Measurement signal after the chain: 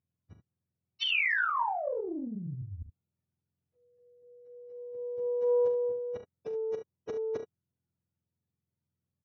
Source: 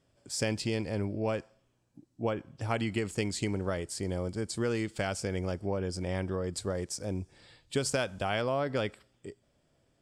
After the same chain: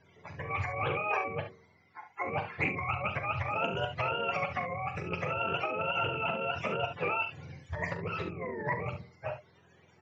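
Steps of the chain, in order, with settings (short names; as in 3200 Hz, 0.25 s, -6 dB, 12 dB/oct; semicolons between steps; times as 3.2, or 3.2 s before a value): spectrum mirrored in octaves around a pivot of 500 Hz; negative-ratio compressor -40 dBFS, ratio -1; rippled Chebyshev low-pass 7200 Hz, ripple 3 dB; on a send: early reflections 41 ms -9.5 dB, 70 ms -10 dB; on the sum: Doppler distortion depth 0.18 ms; gain +8 dB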